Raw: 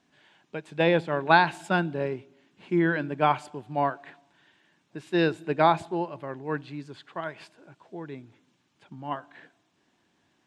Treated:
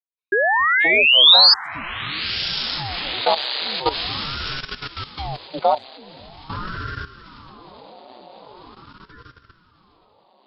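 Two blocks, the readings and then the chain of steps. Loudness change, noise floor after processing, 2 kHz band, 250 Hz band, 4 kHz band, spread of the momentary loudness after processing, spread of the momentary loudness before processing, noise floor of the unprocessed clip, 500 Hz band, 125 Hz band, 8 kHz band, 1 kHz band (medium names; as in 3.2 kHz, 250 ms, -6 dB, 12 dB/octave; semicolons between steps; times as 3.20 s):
+10.5 dB, -58 dBFS, +9.5 dB, -8.0 dB, +24.5 dB, 21 LU, 19 LU, -70 dBFS, +1.5 dB, -2.5 dB, no reading, +2.5 dB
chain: expander on every frequency bin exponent 2; peaking EQ 710 Hz +14 dB 1.3 oct; band-stop 1.7 kHz, Q 22; phase dispersion lows, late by 75 ms, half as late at 730 Hz; painted sound rise, 0.32–1.54 s, 1–4.9 kHz -8 dBFS; on a send: echo that smears into a reverb 1093 ms, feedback 46%, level -9 dB; on the sum: level held to a coarse grid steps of 14 dB; graphic EQ 125/250/500/4000/8000 Hz -12/+8/+5/+12/-4 dB; ring modulator with a swept carrier 410 Hz, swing 85%, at 0.43 Hz; trim -2 dB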